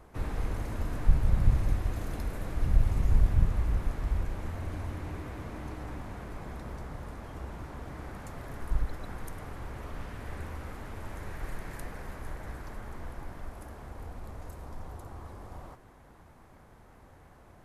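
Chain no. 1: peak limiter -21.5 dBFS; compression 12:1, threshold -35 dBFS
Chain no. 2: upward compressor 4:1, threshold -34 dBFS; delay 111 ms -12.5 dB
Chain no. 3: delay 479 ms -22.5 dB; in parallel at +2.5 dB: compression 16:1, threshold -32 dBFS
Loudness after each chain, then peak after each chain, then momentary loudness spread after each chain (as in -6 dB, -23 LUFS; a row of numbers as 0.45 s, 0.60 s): -44.0 LUFS, -35.5 LUFS, -32.0 LUFS; -25.5 dBFS, -9.5 dBFS, -8.0 dBFS; 6 LU, 16 LU, 15 LU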